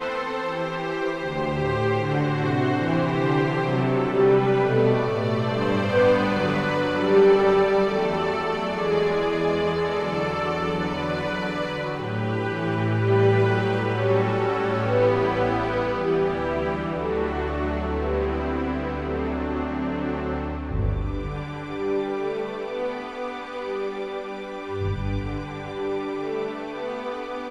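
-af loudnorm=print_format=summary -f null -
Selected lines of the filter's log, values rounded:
Input Integrated:    -24.4 LUFS
Input True Peak:      -6.4 dBTP
Input LRA:             8.9 LU
Input Threshold:     -34.4 LUFS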